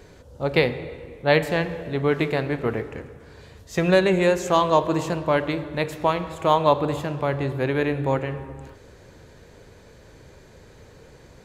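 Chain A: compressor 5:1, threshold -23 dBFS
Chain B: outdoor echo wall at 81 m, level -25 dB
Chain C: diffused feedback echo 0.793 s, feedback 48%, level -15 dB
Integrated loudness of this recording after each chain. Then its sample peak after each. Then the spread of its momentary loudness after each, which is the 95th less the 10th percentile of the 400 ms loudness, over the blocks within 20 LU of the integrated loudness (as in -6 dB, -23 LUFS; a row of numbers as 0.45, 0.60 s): -28.5, -23.0, -23.0 LUFS; -12.0, -3.5, -3.5 dBFS; 13, 13, 18 LU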